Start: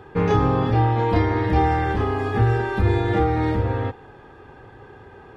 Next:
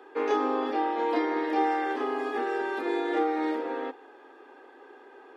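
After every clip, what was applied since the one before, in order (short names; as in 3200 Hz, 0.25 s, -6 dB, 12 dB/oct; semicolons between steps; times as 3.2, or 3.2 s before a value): steep high-pass 260 Hz 72 dB/oct; gain -5 dB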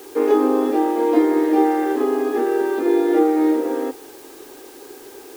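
bell 320 Hz +13.5 dB 1.9 oct; added noise white -46 dBFS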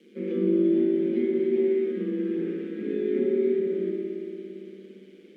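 vowel filter i; ring modulator 73 Hz; spring tank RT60 3.3 s, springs 57 ms, chirp 55 ms, DRR -2.5 dB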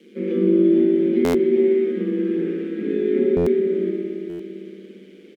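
echo 0.406 s -17.5 dB; stuck buffer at 1.24/3.36/4.29, samples 512, times 8; gain +6 dB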